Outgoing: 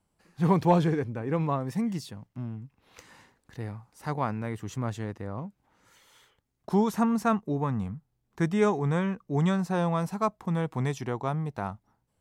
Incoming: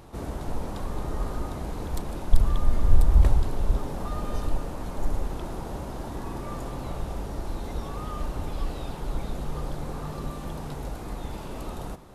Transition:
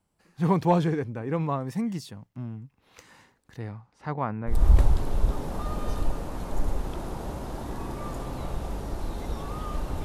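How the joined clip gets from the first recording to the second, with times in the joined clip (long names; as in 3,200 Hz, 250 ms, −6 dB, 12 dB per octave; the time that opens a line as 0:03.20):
outgoing
0:03.58–0:04.62: low-pass filter 7,600 Hz → 1,300 Hz
0:04.54: continue with incoming from 0:03.00, crossfade 0.16 s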